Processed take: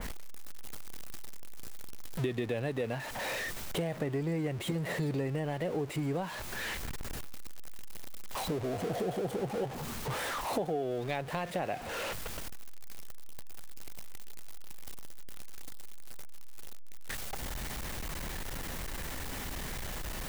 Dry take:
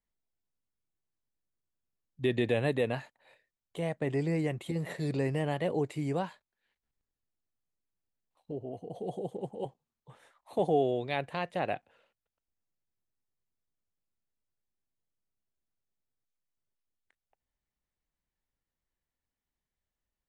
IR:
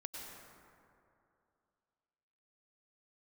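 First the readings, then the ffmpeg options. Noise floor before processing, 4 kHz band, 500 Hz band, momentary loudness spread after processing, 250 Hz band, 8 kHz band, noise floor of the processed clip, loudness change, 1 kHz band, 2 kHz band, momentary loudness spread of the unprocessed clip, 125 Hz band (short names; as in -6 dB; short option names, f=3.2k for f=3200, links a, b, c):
under -85 dBFS, +6.0 dB, -2.0 dB, 19 LU, -1.0 dB, n/a, -40 dBFS, -3.0 dB, +0.5 dB, +3.0 dB, 12 LU, 0.0 dB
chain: -af "aeval=exprs='val(0)+0.5*0.0141*sgn(val(0))':c=same,acompressor=threshold=-39dB:ratio=6,adynamicequalizer=threshold=0.001:dfrequency=2800:dqfactor=0.7:tfrequency=2800:tqfactor=0.7:attack=5:release=100:ratio=0.375:range=1.5:mode=cutabove:tftype=highshelf,volume=8dB"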